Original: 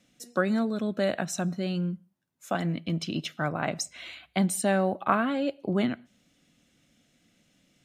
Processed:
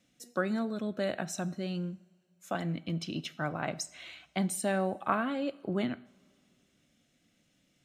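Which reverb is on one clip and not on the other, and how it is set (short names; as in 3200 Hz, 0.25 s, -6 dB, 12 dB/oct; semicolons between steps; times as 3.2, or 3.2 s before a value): two-slope reverb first 0.56 s, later 2.6 s, from -18 dB, DRR 15.5 dB; gain -5 dB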